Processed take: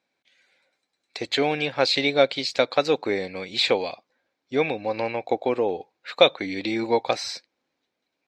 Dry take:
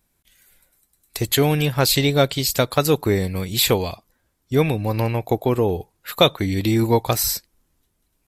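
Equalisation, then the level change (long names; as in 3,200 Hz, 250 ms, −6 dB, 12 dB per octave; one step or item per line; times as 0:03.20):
loudspeaker in its box 270–5,700 Hz, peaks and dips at 270 Hz +4 dB, 530 Hz +8 dB, 770 Hz +6 dB, 1,600 Hz +4 dB, 2,300 Hz +9 dB, 4,000 Hz +6 dB
−6.5 dB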